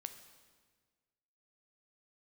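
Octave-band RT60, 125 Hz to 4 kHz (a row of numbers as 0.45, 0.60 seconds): 1.8, 1.7, 1.6, 1.4, 1.4, 1.3 seconds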